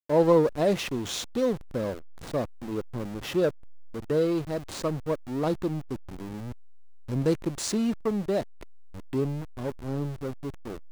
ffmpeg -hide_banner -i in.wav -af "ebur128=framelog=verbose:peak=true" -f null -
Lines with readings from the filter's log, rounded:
Integrated loudness:
  I:         -28.8 LUFS
  Threshold: -39.4 LUFS
Loudness range:
  LRA:         1.8 LU
  Threshold: -50.3 LUFS
  LRA low:   -31.4 LUFS
  LRA high:  -29.5 LUFS
True peak:
  Peak:      -10.0 dBFS